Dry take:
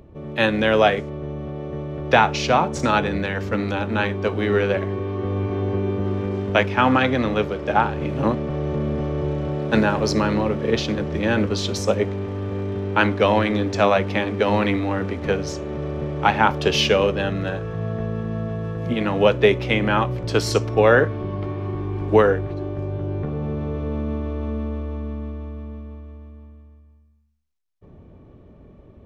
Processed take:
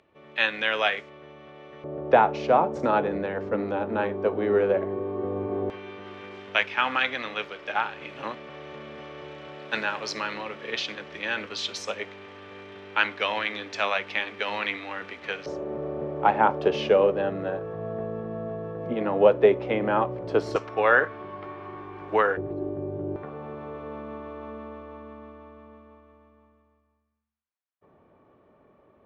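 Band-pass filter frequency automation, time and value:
band-pass filter, Q 0.96
2.4 kHz
from 1.84 s 560 Hz
from 5.70 s 2.6 kHz
from 15.46 s 590 Hz
from 20.56 s 1.4 kHz
from 22.37 s 400 Hz
from 23.16 s 1.2 kHz

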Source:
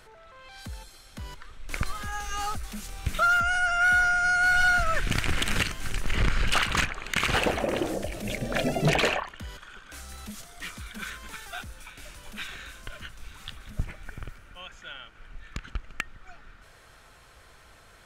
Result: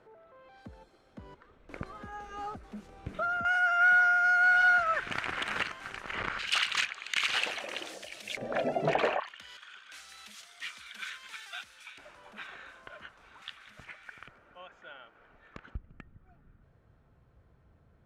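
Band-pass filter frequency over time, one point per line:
band-pass filter, Q 0.89
380 Hz
from 3.45 s 1.1 kHz
from 6.39 s 3.5 kHz
from 8.37 s 740 Hz
from 9.20 s 2.9 kHz
from 11.98 s 820 Hz
from 13.42 s 2 kHz
from 14.28 s 610 Hz
from 15.75 s 130 Hz

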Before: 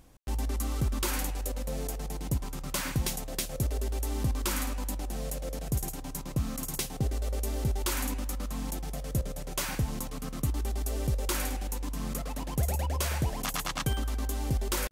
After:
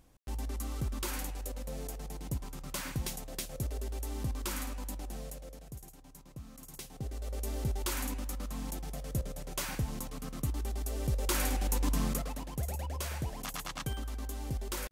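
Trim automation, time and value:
5.14 s -6 dB
5.78 s -16.5 dB
6.51 s -16.5 dB
7.49 s -4 dB
10.96 s -4 dB
11.93 s +5.5 dB
12.51 s -7 dB

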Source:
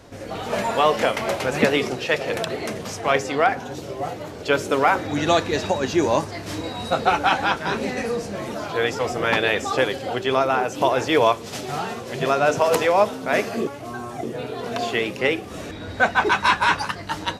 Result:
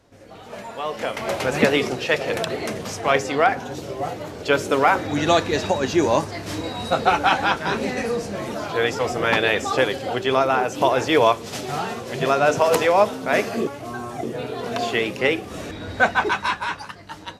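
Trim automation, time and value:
0.78 s -11.5 dB
1.40 s +1 dB
16.06 s +1 dB
16.74 s -9 dB

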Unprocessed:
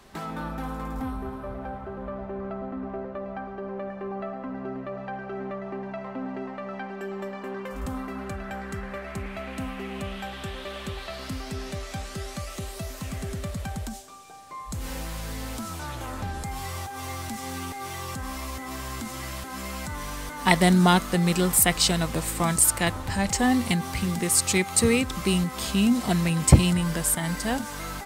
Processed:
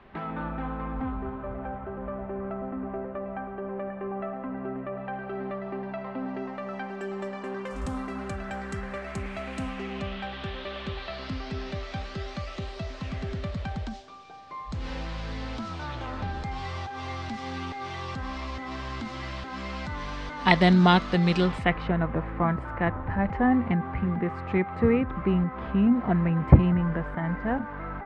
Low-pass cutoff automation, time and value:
low-pass 24 dB/octave
4.93 s 2.8 kHz
5.43 s 4.6 kHz
6.13 s 4.6 kHz
6.67 s 8.9 kHz
9.57 s 8.9 kHz
10.19 s 4.5 kHz
21.42 s 4.5 kHz
21.84 s 1.8 kHz

